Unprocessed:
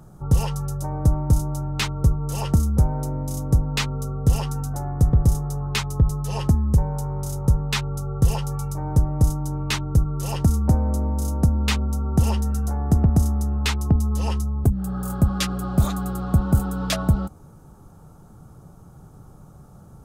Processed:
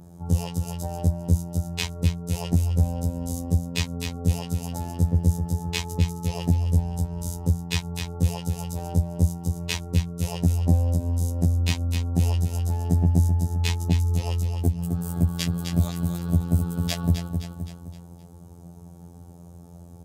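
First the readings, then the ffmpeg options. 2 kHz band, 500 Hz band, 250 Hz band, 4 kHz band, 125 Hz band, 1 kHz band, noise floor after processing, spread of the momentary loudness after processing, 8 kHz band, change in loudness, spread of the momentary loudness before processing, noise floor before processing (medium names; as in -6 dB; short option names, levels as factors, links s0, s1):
-4.0 dB, -3.0 dB, -2.5 dB, -2.0 dB, -2.0 dB, -6.0 dB, -45 dBFS, 8 LU, -2.0 dB, -2.5 dB, 7 LU, -47 dBFS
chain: -filter_complex "[0:a]equalizer=f=1300:t=o:w=0.56:g=-14.5,aecho=1:1:259|518|777|1036|1295:0.398|0.159|0.0637|0.0255|0.0102,adynamicequalizer=threshold=0.00178:dfrequency=8900:dqfactor=3.9:tfrequency=8900:tqfactor=3.9:attack=5:release=100:ratio=0.375:range=2:mode=cutabove:tftype=bell,afftfilt=real='hypot(re,im)*cos(PI*b)':imag='0':win_size=2048:overlap=0.75,highpass=f=49:w=0.5412,highpass=f=49:w=1.3066,asplit=2[s0][s1];[s1]acompressor=threshold=0.0282:ratio=6,volume=1.26[s2];[s0][s2]amix=inputs=2:normalize=0,volume=0.75"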